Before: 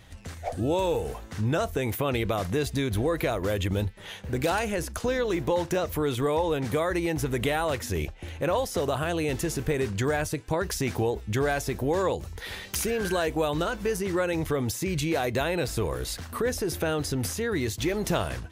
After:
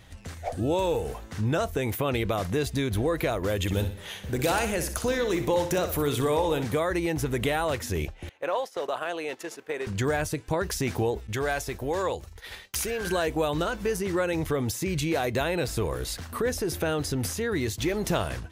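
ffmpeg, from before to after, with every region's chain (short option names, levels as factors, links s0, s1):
-filter_complex "[0:a]asettb=1/sr,asplit=3[s0][s1][s2];[s0]atrim=end=3.574[s3];[s1]atrim=start=3.57:end=6.64,asetpts=PTS-STARTPTS,afade=t=in:d=0.004:c=qsin,afade=t=out:st=3.066:d=0.004:c=qsin,highshelf=f=5200:g=6.5,aecho=1:1:61|122|183|244|305:0.316|0.139|0.0612|0.0269|0.0119,atrim=end_sample=135387[s4];[s2]atrim=start=6.636[s5];[s3][s4]acrossfade=d=0.004:c1=hsin:c2=qsin[s6];[s6][s5]acrossfade=d=0.004:c1=qsin:c2=hsin,asettb=1/sr,asplit=3[s7][s8][s9];[s7]atrim=end=8.294[s10];[s8]atrim=start=8.29:end=9.87,asetpts=PTS-STARTPTS,afade=t=in:d=0.004:c=qsin,afade=t=out:st=1.576:d=0.004:c=qsin,highpass=500,agate=range=0.282:threshold=0.0158:ratio=16:release=100:detection=peak,highshelf=f=5300:g=-11.5[s11];[s9]atrim=start=9.866[s12];[s10][s11]acrossfade=d=0.004:c1=hsin:c2=qsin[s13];[s13][s12]acrossfade=d=0.004:c1=qsin:c2=hsin,asettb=1/sr,asplit=3[s14][s15][s16];[s14]atrim=end=11.274[s17];[s15]atrim=start=11.27:end=13.07,asetpts=PTS-STARTPTS,afade=t=in:d=0.004:c=qsin,afade=t=out:st=1.796:d=0.004:c=qsin,agate=range=0.0224:threshold=0.02:ratio=3:release=100:detection=peak,equalizer=f=190:t=o:w=2.1:g=-7[s18];[s16]atrim=start=13.066[s19];[s17][s18]acrossfade=d=0.004:c1=hsin:c2=qsin[s20];[s20][s19]acrossfade=d=0.004:c1=qsin:c2=hsin"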